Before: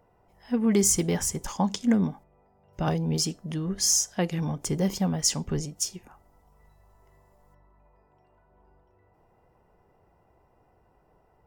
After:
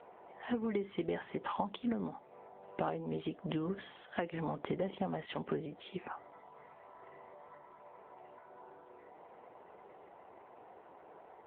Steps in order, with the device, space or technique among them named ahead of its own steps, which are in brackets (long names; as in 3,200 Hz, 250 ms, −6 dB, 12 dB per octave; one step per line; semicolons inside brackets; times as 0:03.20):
voicemail (band-pass filter 360–2,900 Hz; downward compressor 6 to 1, threshold −45 dBFS, peak gain reduction 20 dB; level +11.5 dB; AMR narrowband 7.95 kbit/s 8,000 Hz)